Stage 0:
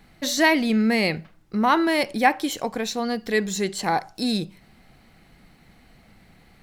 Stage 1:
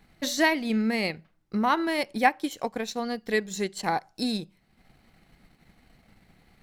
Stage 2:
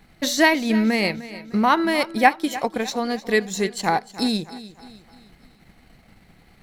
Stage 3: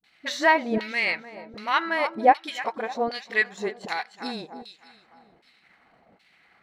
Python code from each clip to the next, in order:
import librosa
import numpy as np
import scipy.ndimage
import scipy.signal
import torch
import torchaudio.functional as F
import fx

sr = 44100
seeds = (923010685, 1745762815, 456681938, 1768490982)

y1 = fx.transient(x, sr, attack_db=4, sustain_db=-8)
y1 = y1 * librosa.db_to_amplitude(-5.5)
y2 = fx.echo_feedback(y1, sr, ms=303, feedback_pct=46, wet_db=-16.0)
y2 = y2 * librosa.db_to_amplitude(6.0)
y3 = fx.filter_lfo_bandpass(y2, sr, shape='saw_down', hz=1.3, low_hz=480.0, high_hz=3700.0, q=1.3)
y3 = fx.dispersion(y3, sr, late='highs', ms=40.0, hz=340.0)
y3 = y3 * librosa.db_to_amplitude(2.5)